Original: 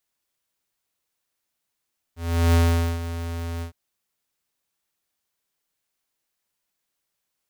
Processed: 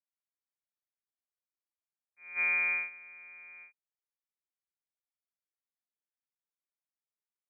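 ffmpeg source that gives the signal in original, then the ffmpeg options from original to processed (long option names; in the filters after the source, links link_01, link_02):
-f lavfi -i "aevalsrc='0.158*(2*lt(mod(84.2*t,1),0.5)-1)':duration=1.561:sample_rate=44100,afade=type=in:duration=0.38,afade=type=out:start_time=0.38:duration=0.447:silence=0.211,afade=type=out:start_time=1.46:duration=0.101"
-af "agate=range=-21dB:threshold=-22dB:ratio=16:detection=peak,acompressor=threshold=-30dB:ratio=8,lowpass=frequency=2100:width_type=q:width=0.5098,lowpass=frequency=2100:width_type=q:width=0.6013,lowpass=frequency=2100:width_type=q:width=0.9,lowpass=frequency=2100:width_type=q:width=2.563,afreqshift=-2500"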